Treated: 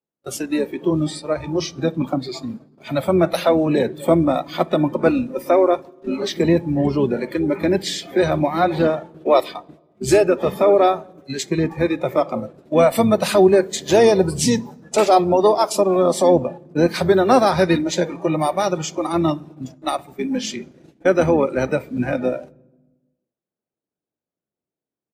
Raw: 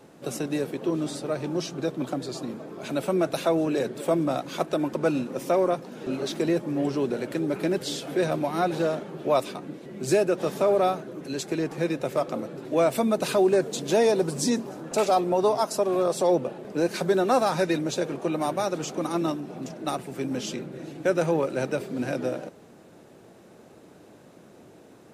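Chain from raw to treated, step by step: harmoniser -12 st -11 dB, -4 st -18 dB; gate -36 dBFS, range -33 dB; spectral noise reduction 15 dB; on a send: reverb RT60 1.2 s, pre-delay 3 ms, DRR 24 dB; on the sum: gain +7.5 dB

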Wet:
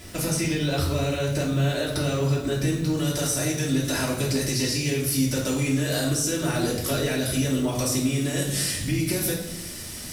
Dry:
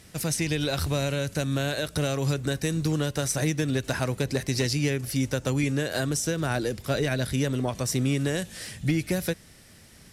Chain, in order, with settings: high shelf 4000 Hz -2 dB, from 2.97 s +10.5 dB; limiter -18 dBFS, peak gain reduction 10 dB; compressor 5:1, threshold -34 dBFS, peak gain reduction 10.5 dB; bit-crush 10-bit; reverb RT60 0.95 s, pre-delay 3 ms, DRR -5.5 dB; gain +4.5 dB

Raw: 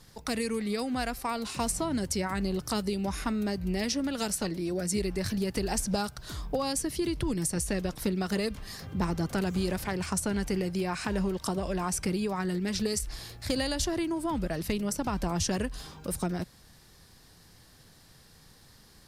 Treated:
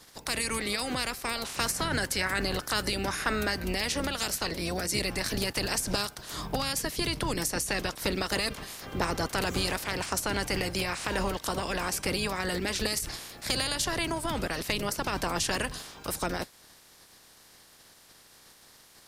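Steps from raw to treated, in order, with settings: spectral limiter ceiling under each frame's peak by 20 dB; 1.59–3.64 bell 1600 Hz +7.5 dB 0.52 oct

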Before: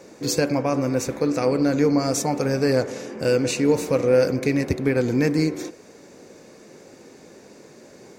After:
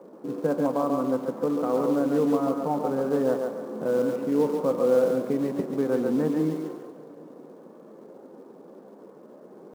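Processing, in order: Chebyshev band-pass 180–1200 Hz, order 3; dynamic EQ 420 Hz, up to -4 dB, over -34 dBFS, Q 0.97; tempo 0.84×; in parallel at -5 dB: short-mantissa float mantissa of 2-bit; on the sum: thinning echo 0.139 s, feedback 31%, high-pass 320 Hz, level -3.5 dB; on a send at -19 dB: reverb RT60 5.2 s, pre-delay 5 ms; on the sum: gain -4.5 dB

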